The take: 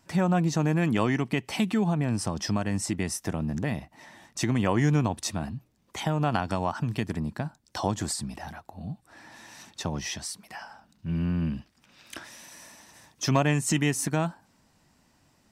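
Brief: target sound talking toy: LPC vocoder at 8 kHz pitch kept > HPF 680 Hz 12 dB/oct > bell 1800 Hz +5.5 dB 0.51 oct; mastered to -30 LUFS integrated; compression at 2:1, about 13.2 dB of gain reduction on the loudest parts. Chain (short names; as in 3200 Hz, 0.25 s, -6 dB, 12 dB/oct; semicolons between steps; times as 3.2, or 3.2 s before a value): compressor 2:1, threshold -44 dBFS; LPC vocoder at 8 kHz pitch kept; HPF 680 Hz 12 dB/oct; bell 1800 Hz +5.5 dB 0.51 oct; gain +17 dB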